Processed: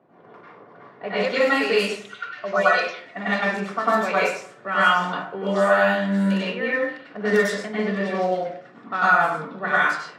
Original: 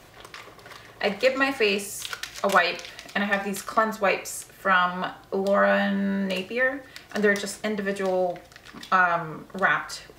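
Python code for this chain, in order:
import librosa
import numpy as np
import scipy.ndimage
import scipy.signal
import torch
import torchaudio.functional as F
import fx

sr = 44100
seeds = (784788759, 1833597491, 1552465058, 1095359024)

y = fx.spec_expand(x, sr, power=1.8, at=(1.98, 3.17))
y = scipy.signal.sosfilt(scipy.signal.butter(4, 150.0, 'highpass', fs=sr, output='sos'), y)
y = fx.echo_stepped(y, sr, ms=585, hz=4100.0, octaves=0.7, feedback_pct=70, wet_db=-10.0)
y = fx.rev_plate(y, sr, seeds[0], rt60_s=0.55, hf_ratio=0.8, predelay_ms=85, drr_db=-8.5)
y = fx.env_lowpass(y, sr, base_hz=830.0, full_db=-9.0)
y = y * librosa.db_to_amplitude(-6.0)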